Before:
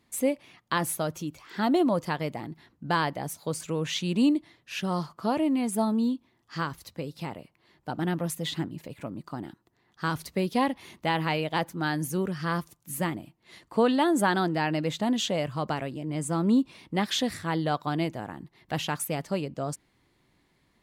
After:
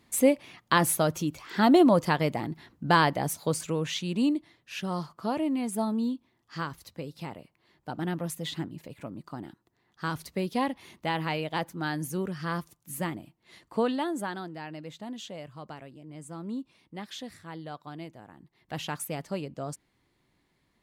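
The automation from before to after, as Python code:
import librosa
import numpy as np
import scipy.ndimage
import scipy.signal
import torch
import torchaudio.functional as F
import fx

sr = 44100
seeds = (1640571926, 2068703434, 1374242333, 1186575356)

y = fx.gain(x, sr, db=fx.line((3.4, 4.5), (4.04, -3.0), (13.76, -3.0), (14.47, -13.0), (18.26, -13.0), (18.86, -4.0)))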